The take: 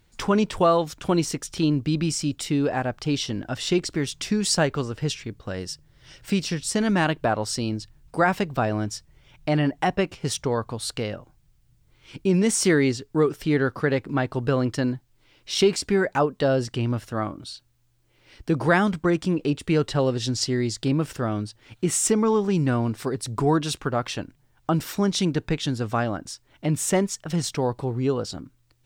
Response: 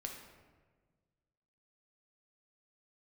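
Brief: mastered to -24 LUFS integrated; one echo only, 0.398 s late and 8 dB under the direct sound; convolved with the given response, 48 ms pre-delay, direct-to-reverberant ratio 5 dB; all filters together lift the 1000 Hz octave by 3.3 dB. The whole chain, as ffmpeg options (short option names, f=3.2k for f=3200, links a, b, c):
-filter_complex "[0:a]equalizer=f=1k:t=o:g=4.5,aecho=1:1:398:0.398,asplit=2[a][b];[1:a]atrim=start_sample=2205,adelay=48[c];[b][c]afir=irnorm=-1:irlink=0,volume=-3dB[d];[a][d]amix=inputs=2:normalize=0,volume=-2dB"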